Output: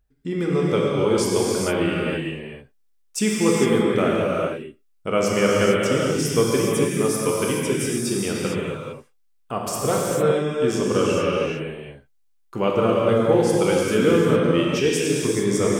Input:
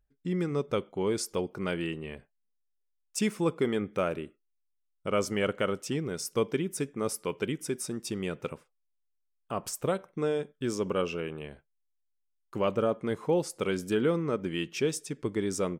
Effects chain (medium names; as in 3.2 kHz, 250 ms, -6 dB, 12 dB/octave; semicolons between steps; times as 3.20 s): gated-style reverb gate 480 ms flat, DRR -4.5 dB; trim +5 dB